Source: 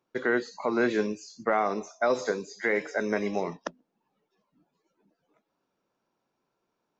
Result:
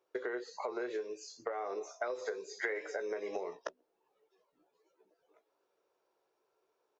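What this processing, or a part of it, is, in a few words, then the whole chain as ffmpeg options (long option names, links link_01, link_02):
serial compression, peaks first: -filter_complex "[0:a]lowshelf=frequency=300:width_type=q:width=3:gain=-11,asplit=2[link_01][link_02];[link_02]adelay=16,volume=-8.5dB[link_03];[link_01][link_03]amix=inputs=2:normalize=0,acompressor=threshold=-28dB:ratio=10,acompressor=threshold=-35dB:ratio=2,asettb=1/sr,asplit=3[link_04][link_05][link_06];[link_04]atrim=end=1.934[link_07];[link_05]atrim=start=1.93:end=2.87,asetpts=PTS-STARTPTS,afade=type=in:duration=0.004:curve=qsin,afade=type=out:start_time=0.936:duration=0.004:curve=qsin,equalizer=frequency=1800:width_type=o:width=1.4:gain=4[link_08];[link_06]atrim=start=2.866[link_09];[link_07][link_08]acrossfade=duration=0.004:curve1=hsin:curve2=qsin[link_10];[link_10][link_09]acrossfade=duration=0.004:curve1=qsin:curve2=hsin,volume=-2.5dB"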